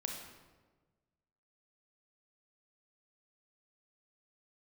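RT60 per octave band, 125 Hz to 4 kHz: 1.7 s, 1.5 s, 1.5 s, 1.2 s, 1.0 s, 0.85 s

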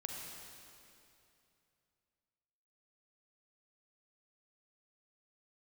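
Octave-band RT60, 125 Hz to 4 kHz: 3.2 s, 2.9 s, 2.8 s, 2.7 s, 2.5 s, 2.5 s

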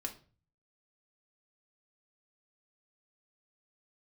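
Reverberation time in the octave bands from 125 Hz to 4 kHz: 0.75 s, 0.50 s, 0.40 s, 0.35 s, 0.35 s, 0.30 s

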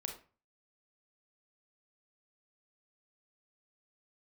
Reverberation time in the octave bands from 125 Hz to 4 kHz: 0.55 s, 0.40 s, 0.35 s, 0.40 s, 0.35 s, 0.25 s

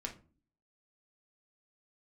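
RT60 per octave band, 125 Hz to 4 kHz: 0.60 s, 0.65 s, 0.45 s, 0.35 s, 0.25 s, 0.20 s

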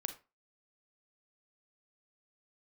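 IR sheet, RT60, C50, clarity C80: 0.30 s, 11.5 dB, 18.5 dB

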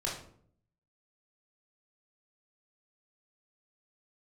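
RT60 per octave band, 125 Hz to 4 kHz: 0.95 s, 0.80 s, 0.65 s, 0.55 s, 0.45 s, 0.35 s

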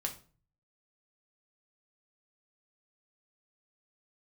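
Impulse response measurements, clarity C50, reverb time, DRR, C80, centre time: 12.0 dB, 0.40 s, 2.0 dB, 17.5 dB, 12 ms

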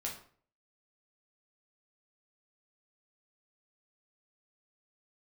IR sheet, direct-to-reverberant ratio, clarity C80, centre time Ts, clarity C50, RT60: -2.5 dB, 12.0 dB, 25 ms, 7.0 dB, 0.50 s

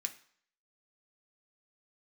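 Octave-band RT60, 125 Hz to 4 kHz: 0.45 s, 0.50 s, 0.55 s, 0.60 s, 0.60 s, 0.55 s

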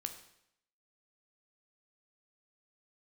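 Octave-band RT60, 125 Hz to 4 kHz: 0.75 s, 0.75 s, 0.75 s, 0.75 s, 0.75 s, 0.70 s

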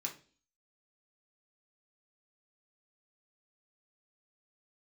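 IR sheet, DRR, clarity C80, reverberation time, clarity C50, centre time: -1.0 dB, 17.5 dB, 0.40 s, 11.5 dB, 14 ms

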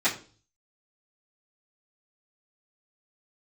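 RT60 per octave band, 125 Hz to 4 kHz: 0.70 s, 0.50 s, 0.45 s, 0.35 s, 0.35 s, 0.40 s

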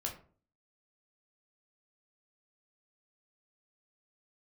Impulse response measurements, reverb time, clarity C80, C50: 0.45 s, 14.5 dB, 9.5 dB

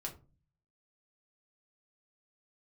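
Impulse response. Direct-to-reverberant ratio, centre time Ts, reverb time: -0.5 dB, 13 ms, 0.35 s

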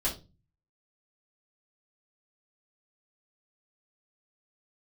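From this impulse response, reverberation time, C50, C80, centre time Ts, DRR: 0.30 s, 10.5 dB, 17.5 dB, 21 ms, -7.0 dB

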